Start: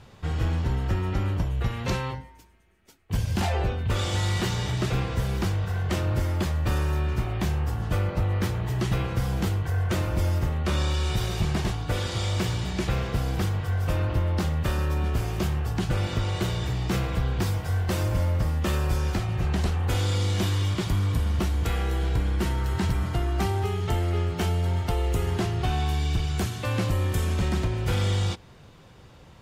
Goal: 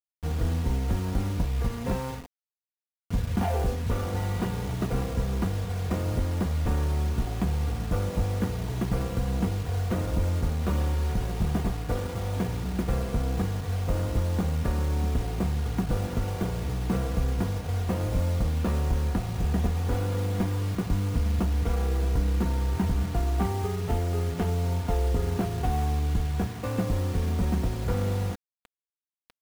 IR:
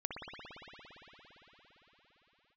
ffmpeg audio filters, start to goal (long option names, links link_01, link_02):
-af "adynamicsmooth=sensitivity=1:basefreq=580,acrusher=bits=6:mix=0:aa=0.000001,aecho=1:1:4.2:0.46"